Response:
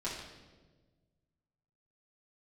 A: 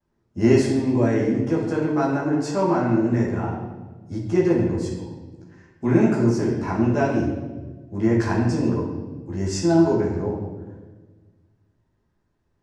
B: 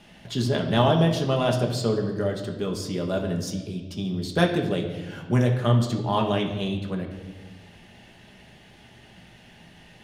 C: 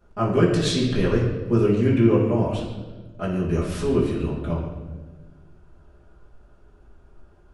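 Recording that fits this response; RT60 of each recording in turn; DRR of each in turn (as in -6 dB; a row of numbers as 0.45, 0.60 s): C; 1.3, 1.4, 1.4 s; -18.0, 1.0, -8.5 dB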